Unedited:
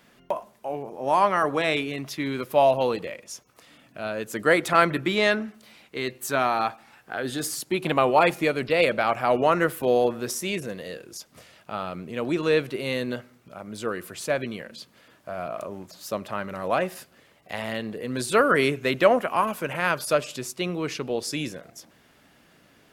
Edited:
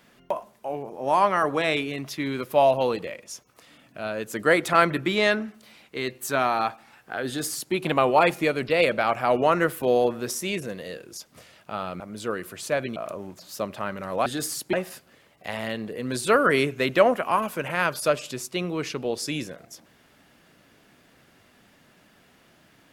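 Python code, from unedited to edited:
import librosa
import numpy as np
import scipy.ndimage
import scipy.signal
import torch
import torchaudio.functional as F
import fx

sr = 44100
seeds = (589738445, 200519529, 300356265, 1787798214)

y = fx.edit(x, sr, fx.duplicate(start_s=7.27, length_s=0.47, to_s=16.78),
    fx.cut(start_s=12.0, length_s=1.58),
    fx.cut(start_s=14.54, length_s=0.94), tone=tone)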